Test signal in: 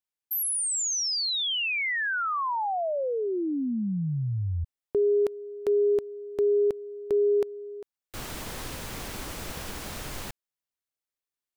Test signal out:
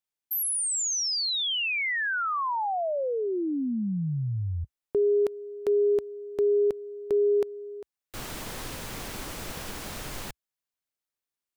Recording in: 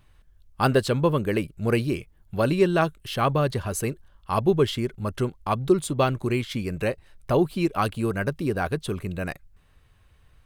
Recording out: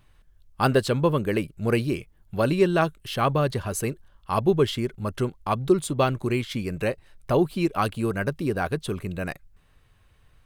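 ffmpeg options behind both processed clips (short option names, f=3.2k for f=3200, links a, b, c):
-af "equalizer=f=63:t=o:w=0.73:g=-4.5"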